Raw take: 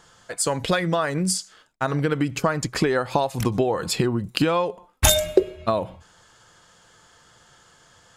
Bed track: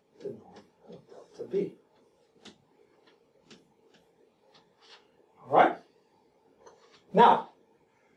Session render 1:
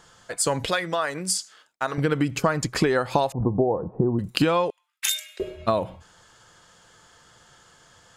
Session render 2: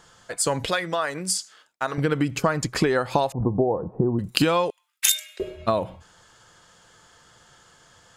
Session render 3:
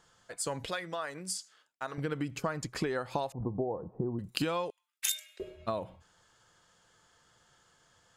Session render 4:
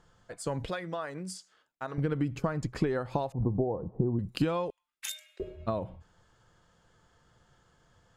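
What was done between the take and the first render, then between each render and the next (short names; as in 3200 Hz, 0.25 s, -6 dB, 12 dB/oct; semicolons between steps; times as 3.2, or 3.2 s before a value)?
0.69–1.98 HPF 600 Hz 6 dB/oct; 3.32–4.19 steep low-pass 930 Hz; 4.7–5.4 ladder high-pass 1600 Hz, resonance 30%
4.32–5.12 high shelf 4000 Hz +7.5 dB
gain -11.5 dB
tilt -2.5 dB/oct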